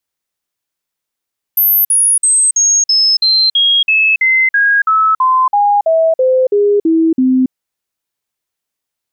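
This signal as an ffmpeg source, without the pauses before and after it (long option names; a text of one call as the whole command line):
ffmpeg -f lavfi -i "aevalsrc='0.422*clip(min(mod(t,0.33),0.28-mod(t,0.33))/0.005,0,1)*sin(2*PI*13100*pow(2,-floor(t/0.33)/3)*mod(t,0.33))':duration=5.94:sample_rate=44100" out.wav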